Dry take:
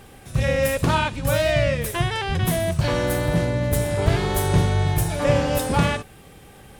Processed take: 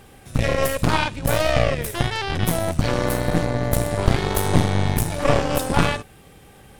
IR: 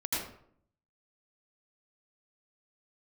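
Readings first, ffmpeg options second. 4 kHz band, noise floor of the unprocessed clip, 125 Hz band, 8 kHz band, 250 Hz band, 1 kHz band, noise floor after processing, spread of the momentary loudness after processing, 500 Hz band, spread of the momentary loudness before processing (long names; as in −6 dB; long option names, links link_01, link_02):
+1.0 dB, −46 dBFS, −1.0 dB, +1.0 dB, +1.0 dB, +1.5 dB, −48 dBFS, 4 LU, −0.5 dB, 4 LU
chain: -af "aeval=exprs='0.631*(cos(1*acos(clip(val(0)/0.631,-1,1)))-cos(1*PI/2))+0.251*(cos(4*acos(clip(val(0)/0.631,-1,1)))-cos(4*PI/2))':channel_layout=same,volume=-1.5dB"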